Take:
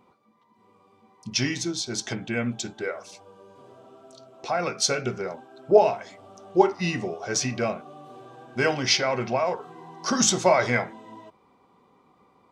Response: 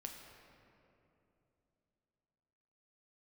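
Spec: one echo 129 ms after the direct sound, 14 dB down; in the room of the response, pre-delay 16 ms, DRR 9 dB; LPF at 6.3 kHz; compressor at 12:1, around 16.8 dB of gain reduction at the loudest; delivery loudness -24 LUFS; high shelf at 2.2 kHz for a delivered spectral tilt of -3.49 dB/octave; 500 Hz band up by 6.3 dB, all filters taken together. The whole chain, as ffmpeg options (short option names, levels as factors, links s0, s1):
-filter_complex "[0:a]lowpass=6300,equalizer=f=500:t=o:g=8,highshelf=f=2200:g=5,acompressor=threshold=0.0891:ratio=12,aecho=1:1:129:0.2,asplit=2[s0][s1];[1:a]atrim=start_sample=2205,adelay=16[s2];[s1][s2]afir=irnorm=-1:irlink=0,volume=0.531[s3];[s0][s3]amix=inputs=2:normalize=0,volume=1.41"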